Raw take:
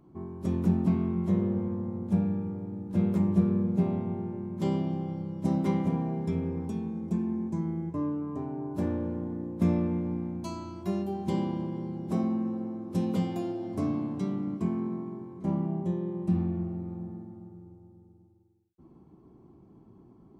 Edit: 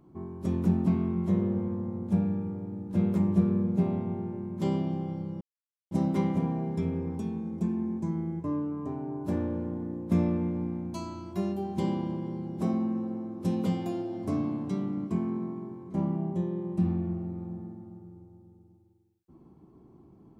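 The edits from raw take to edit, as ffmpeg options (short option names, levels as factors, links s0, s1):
-filter_complex "[0:a]asplit=2[s0][s1];[s0]atrim=end=5.41,asetpts=PTS-STARTPTS,afade=t=out:st=5.406:d=0.004:c=hsin,apad=pad_dur=0.5[s2];[s1]atrim=start=5.41,asetpts=PTS-STARTPTS,afade=t=in:d=0.004:c=hsin[s3];[s2][s3]concat=n=2:v=0:a=1"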